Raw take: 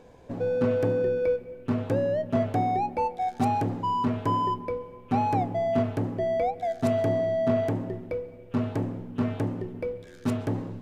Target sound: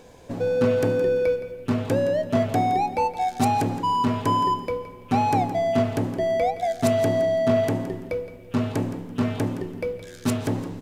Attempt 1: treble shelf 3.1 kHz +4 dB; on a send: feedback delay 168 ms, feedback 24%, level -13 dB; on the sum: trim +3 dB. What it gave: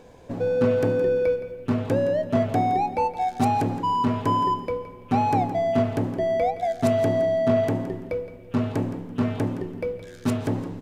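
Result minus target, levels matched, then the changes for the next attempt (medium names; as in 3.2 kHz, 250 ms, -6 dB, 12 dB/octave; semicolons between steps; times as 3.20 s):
8 kHz band -6.0 dB
change: treble shelf 3.1 kHz +11.5 dB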